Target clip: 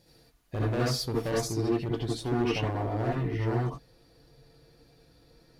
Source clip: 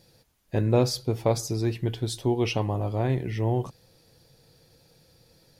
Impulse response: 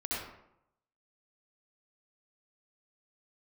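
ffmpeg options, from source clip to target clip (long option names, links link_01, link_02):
-filter_complex "[0:a]asetnsamples=nb_out_samples=441:pad=0,asendcmd='1.45 highshelf g -9',highshelf=frequency=3600:gain=-2,asoftclip=type=hard:threshold=-24dB[link_01];[1:a]atrim=start_sample=2205,atrim=end_sample=3969[link_02];[link_01][link_02]afir=irnorm=-1:irlink=0"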